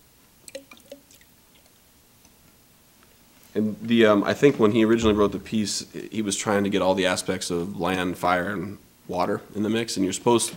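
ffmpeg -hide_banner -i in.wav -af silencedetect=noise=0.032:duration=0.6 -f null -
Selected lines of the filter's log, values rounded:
silence_start: 0.92
silence_end: 3.55 | silence_duration: 2.63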